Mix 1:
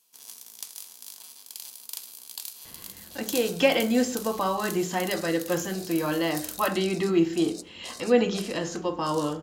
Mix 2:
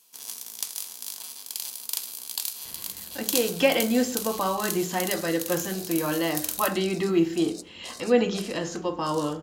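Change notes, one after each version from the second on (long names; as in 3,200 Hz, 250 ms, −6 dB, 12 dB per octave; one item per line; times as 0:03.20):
first sound +7.0 dB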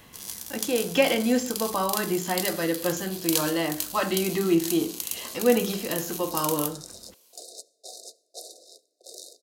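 speech: entry −2.65 s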